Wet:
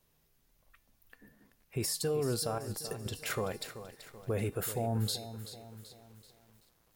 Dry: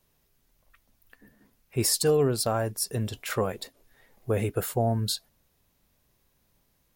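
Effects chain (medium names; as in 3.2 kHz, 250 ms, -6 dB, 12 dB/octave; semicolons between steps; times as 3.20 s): 2.58–3.06 s: compressor with a negative ratio -39 dBFS, ratio -1; peak limiter -22 dBFS, peak gain reduction 9.5 dB; feedback comb 160 Hz, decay 0.64 s, harmonics odd, mix 60%; bit-crushed delay 383 ms, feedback 55%, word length 10-bit, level -12 dB; trim +5 dB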